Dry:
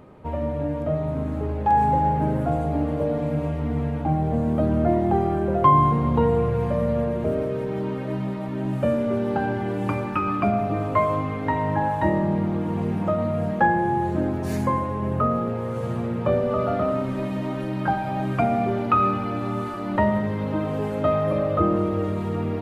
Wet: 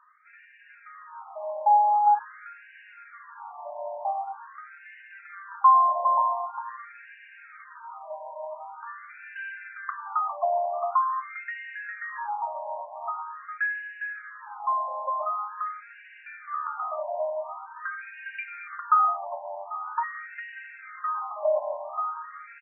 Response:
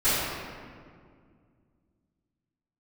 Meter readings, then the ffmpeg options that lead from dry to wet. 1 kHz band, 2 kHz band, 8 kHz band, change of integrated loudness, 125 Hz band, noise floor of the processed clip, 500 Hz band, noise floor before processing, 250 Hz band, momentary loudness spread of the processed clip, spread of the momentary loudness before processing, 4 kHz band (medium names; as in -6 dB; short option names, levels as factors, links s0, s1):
-1.0 dB, -0.5 dB, no reading, -4.0 dB, under -40 dB, -51 dBFS, -10.5 dB, -29 dBFS, under -40 dB, 23 LU, 7 LU, under -15 dB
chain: -af "aecho=1:1:405:0.562,afftfilt=real='re*between(b*sr/1024,770*pow(2100/770,0.5+0.5*sin(2*PI*0.45*pts/sr))/1.41,770*pow(2100/770,0.5+0.5*sin(2*PI*0.45*pts/sr))*1.41)':imag='im*between(b*sr/1024,770*pow(2100/770,0.5+0.5*sin(2*PI*0.45*pts/sr))/1.41,770*pow(2100/770,0.5+0.5*sin(2*PI*0.45*pts/sr))*1.41)':win_size=1024:overlap=0.75"